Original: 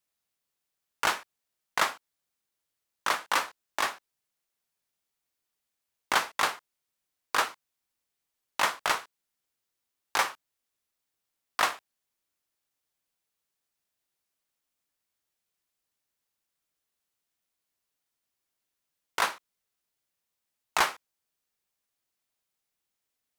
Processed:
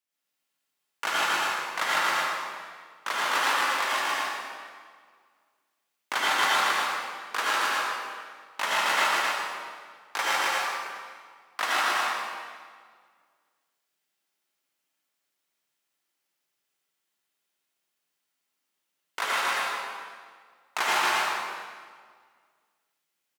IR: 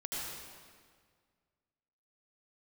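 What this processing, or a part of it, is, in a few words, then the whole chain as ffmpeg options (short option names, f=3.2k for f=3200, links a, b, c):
stadium PA: -filter_complex "[0:a]highpass=180,equalizer=f=2.2k:t=o:w=1.9:g=3.5,aecho=1:1:154.5|268.2:0.708|0.631[a];[1:a]atrim=start_sample=2205[b];[a][b]afir=irnorm=-1:irlink=0,volume=-2dB"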